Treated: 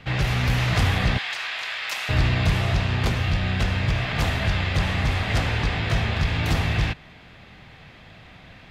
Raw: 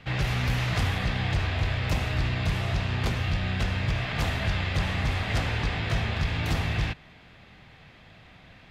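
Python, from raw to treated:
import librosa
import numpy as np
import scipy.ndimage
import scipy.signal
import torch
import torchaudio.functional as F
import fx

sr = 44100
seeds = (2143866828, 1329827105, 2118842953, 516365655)

y = fx.highpass(x, sr, hz=1300.0, slope=12, at=(1.18, 2.09))
y = fx.rider(y, sr, range_db=10, speed_s=2.0)
y = y * librosa.db_to_amplitude(4.5)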